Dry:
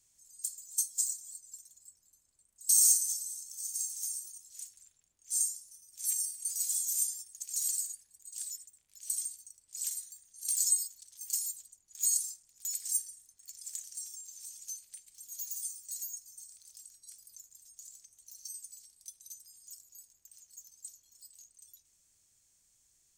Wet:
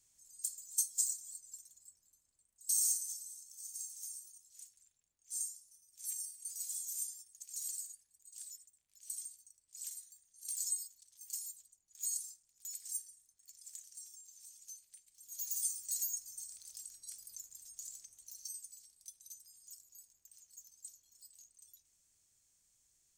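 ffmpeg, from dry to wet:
-af "volume=3.16,afade=t=out:st=1.51:d=1.39:silence=0.446684,afade=t=in:st=15.2:d=0.45:silence=0.251189,afade=t=out:st=17.91:d=0.8:silence=0.446684"

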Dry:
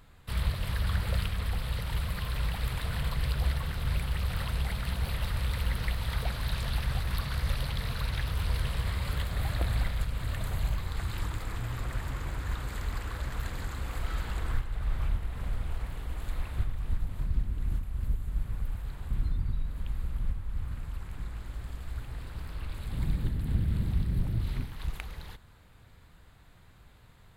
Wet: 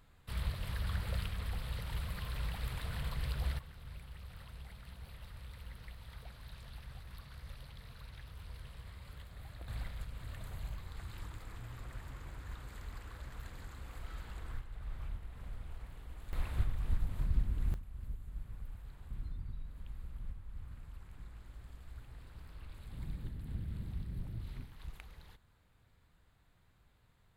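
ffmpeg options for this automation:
-af "asetnsamples=n=441:p=0,asendcmd='3.59 volume volume -19dB;9.68 volume volume -12.5dB;16.33 volume volume -2.5dB;17.74 volume volume -12.5dB',volume=0.422"

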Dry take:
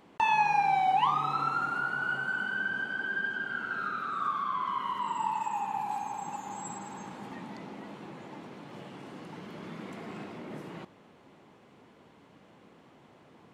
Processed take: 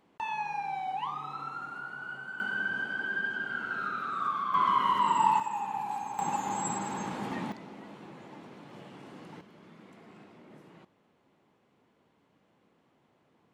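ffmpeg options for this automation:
-af "asetnsamples=n=441:p=0,asendcmd='2.4 volume volume 0dB;4.54 volume volume 7dB;5.4 volume volume -1dB;6.19 volume volume 7dB;7.52 volume volume -3dB;9.41 volume volume -11.5dB',volume=0.355"

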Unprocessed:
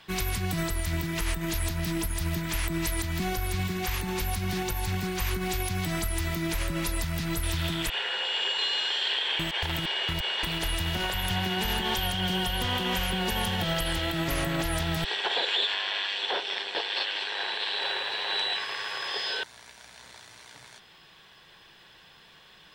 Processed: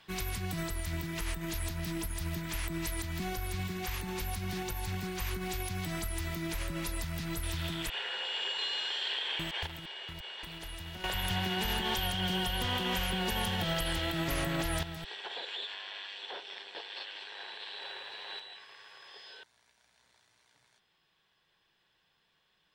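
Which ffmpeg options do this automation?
-af "asetnsamples=n=441:p=0,asendcmd='9.67 volume volume -14dB;11.04 volume volume -4dB;14.83 volume volume -13dB;18.39 volume volume -19.5dB',volume=0.473"

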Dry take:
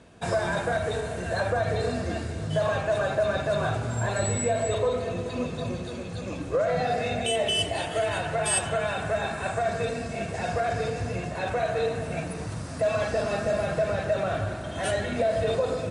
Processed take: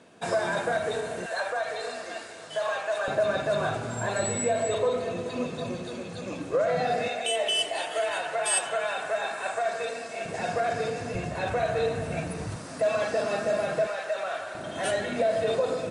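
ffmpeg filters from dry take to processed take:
-af "asetnsamples=n=441:p=0,asendcmd='1.26 highpass f 680;3.08 highpass f 170;7.08 highpass f 500;10.25 highpass f 180;11.15 highpass f 53;12.56 highpass f 220;13.87 highpass f 710;14.55 highpass f 190',highpass=210"

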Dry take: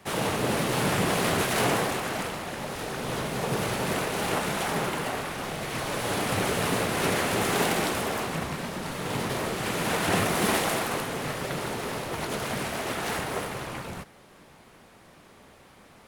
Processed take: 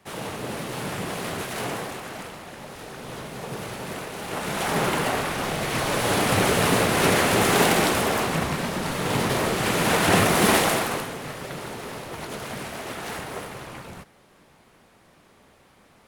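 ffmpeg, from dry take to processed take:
-af "volume=2,afade=t=in:st=4.28:d=0.64:silence=0.266073,afade=t=out:st=10.6:d=0.58:silence=0.354813"

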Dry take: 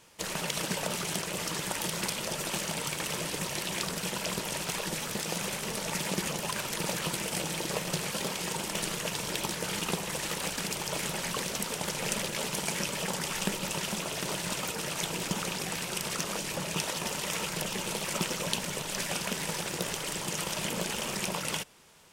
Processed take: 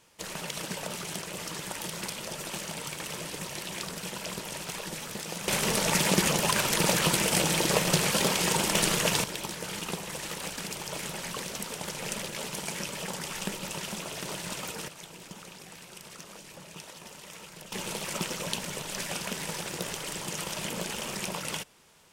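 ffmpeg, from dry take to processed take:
-af "asetnsamples=n=441:p=0,asendcmd='5.48 volume volume 7.5dB;9.24 volume volume -3dB;14.88 volume volume -13dB;17.72 volume volume -1.5dB',volume=0.668"

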